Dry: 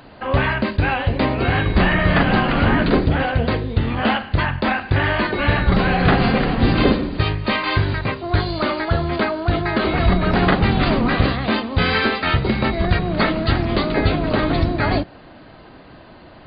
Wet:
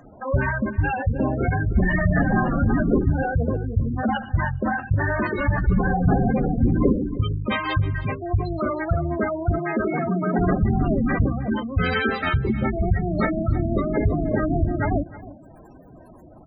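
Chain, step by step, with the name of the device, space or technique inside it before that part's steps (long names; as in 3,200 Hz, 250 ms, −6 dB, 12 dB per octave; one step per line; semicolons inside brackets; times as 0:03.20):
plain cassette with noise reduction switched in (one half of a high-frequency compander decoder only; tape wow and flutter 12 cents; white noise bed)
0:09.58–0:10.39: high-pass filter 150 Hz 24 dB per octave
gate on every frequency bin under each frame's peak −10 dB strong
single-tap delay 314 ms −17.5 dB
level −2 dB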